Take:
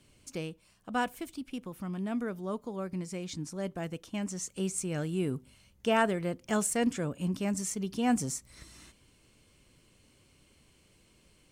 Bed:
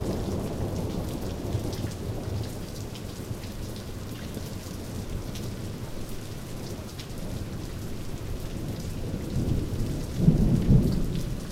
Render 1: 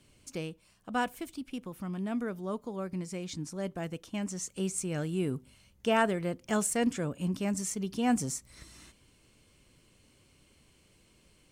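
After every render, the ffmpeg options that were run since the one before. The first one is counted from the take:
-af anull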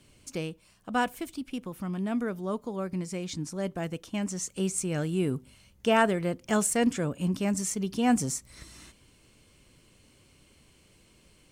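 -af "volume=1.5"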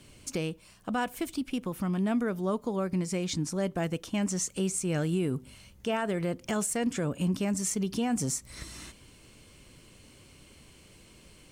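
-filter_complex "[0:a]asplit=2[s0][s1];[s1]acompressor=threshold=0.0178:ratio=6,volume=0.841[s2];[s0][s2]amix=inputs=2:normalize=0,alimiter=limit=0.0944:level=0:latency=1:release=132"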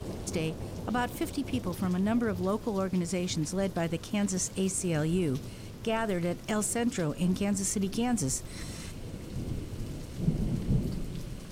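-filter_complex "[1:a]volume=0.376[s0];[0:a][s0]amix=inputs=2:normalize=0"

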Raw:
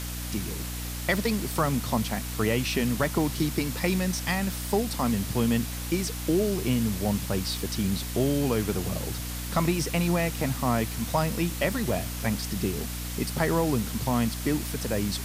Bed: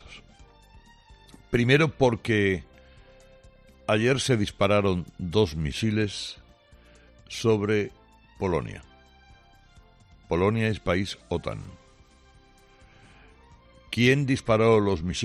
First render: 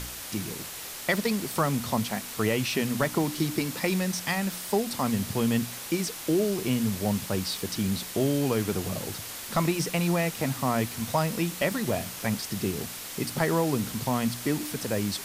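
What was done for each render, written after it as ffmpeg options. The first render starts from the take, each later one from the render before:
-af "bandreject=f=60:t=h:w=4,bandreject=f=120:t=h:w=4,bandreject=f=180:t=h:w=4,bandreject=f=240:t=h:w=4,bandreject=f=300:t=h:w=4"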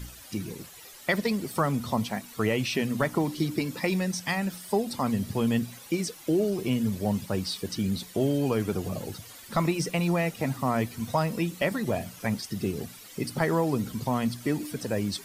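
-af "afftdn=nr=13:nf=-39"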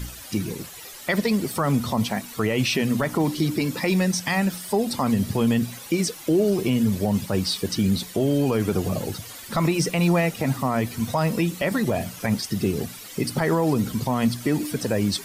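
-af "alimiter=limit=0.112:level=0:latency=1:release=55,acontrast=84"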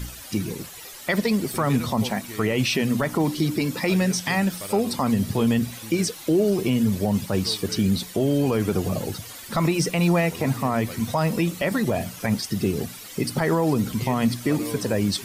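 -filter_complex "[1:a]volume=0.168[s0];[0:a][s0]amix=inputs=2:normalize=0"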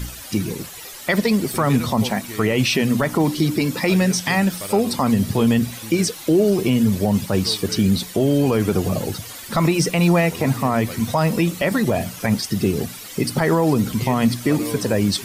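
-af "volume=1.58"

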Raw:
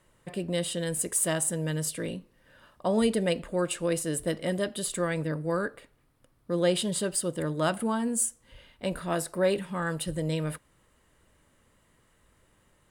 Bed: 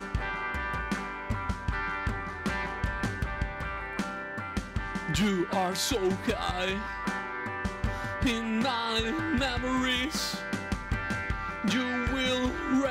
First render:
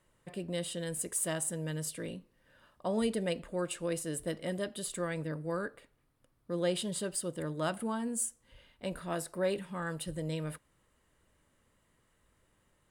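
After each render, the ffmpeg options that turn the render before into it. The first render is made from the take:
-af "volume=0.473"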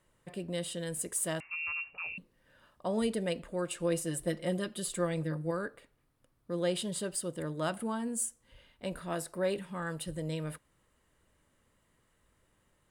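-filter_complex "[0:a]asettb=1/sr,asplit=3[s0][s1][s2];[s0]atrim=end=1.404[s3];[s1]atrim=start=1.4:end=2.18,asetpts=PTS-STARTPTS,afade=t=in:d=0.004:c=qsin,afade=t=out:st=0.776:d=0.004:c=qsin,lowpass=f=2500:t=q:w=0.5098,lowpass=f=2500:t=q:w=0.6013,lowpass=f=2500:t=q:w=0.9,lowpass=f=2500:t=q:w=2.563,afreqshift=-2900[s4];[s2]atrim=start=2.176[s5];[s3][s4]acrossfade=d=0.004:c1=hsin:c2=qsin[s6];[s6][s5]acrossfade=d=0.004:c1=qsin:c2=hsin,asettb=1/sr,asplit=3[s7][s8][s9];[s7]atrim=end=3.794[s10];[s8]atrim=start=3.79:end=5.51,asetpts=PTS-STARTPTS,afade=t=in:d=0.004:c=qsin,afade=t=out:st=1.716:d=0.004:c=qsin,aecho=1:1:5.7:0.65,atrim=end_sample=75852[s11];[s9]atrim=start=5.506[s12];[s10][s11]acrossfade=d=0.004:c1=hsin:c2=qsin[s13];[s13][s12]acrossfade=d=0.004:c1=qsin:c2=hsin"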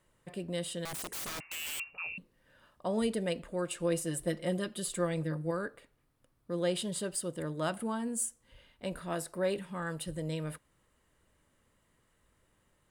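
-filter_complex "[0:a]asettb=1/sr,asplit=3[s0][s1][s2];[s0]atrim=end=0.854[s3];[s1]atrim=start=0.85:end=1.8,asetpts=PTS-STARTPTS,afade=t=in:d=0.004:c=qsin,afade=t=out:st=0.946:d=0.004:c=qsin,aeval=exprs='(mod(50.1*val(0)+1,2)-1)/50.1':c=same[s4];[s2]atrim=start=1.796[s5];[s3][s4]acrossfade=d=0.004:c1=hsin:c2=qsin[s6];[s6][s5]acrossfade=d=0.004:c1=qsin:c2=hsin"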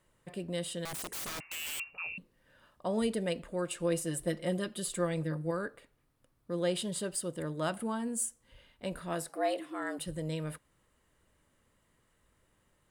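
-filter_complex "[0:a]asettb=1/sr,asplit=3[s0][s1][s2];[s0]atrim=end=9.294[s3];[s1]atrim=start=9.29:end=9.99,asetpts=PTS-STARTPTS,afade=t=in:d=0.004:c=qsin,afade=t=out:st=0.696:d=0.004:c=qsin,afreqshift=130[s4];[s2]atrim=start=9.986[s5];[s3][s4]acrossfade=d=0.004:c1=hsin:c2=qsin[s6];[s6][s5]acrossfade=d=0.004:c1=qsin:c2=hsin"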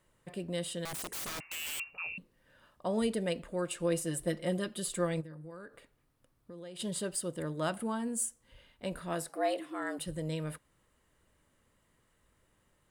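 -filter_complex "[0:a]asplit=3[s0][s1][s2];[s0]afade=t=out:st=5.2:d=0.02[s3];[s1]acompressor=threshold=0.00501:ratio=4:attack=3.2:release=140:knee=1:detection=peak,afade=t=in:st=5.2:d=0.02,afade=t=out:st=6.79:d=0.02[s4];[s2]afade=t=in:st=6.79:d=0.02[s5];[s3][s4][s5]amix=inputs=3:normalize=0"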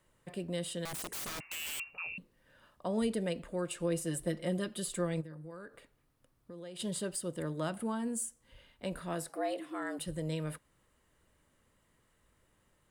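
-filter_complex "[0:a]acrossover=split=370[s0][s1];[s1]acompressor=threshold=0.0141:ratio=2[s2];[s0][s2]amix=inputs=2:normalize=0"

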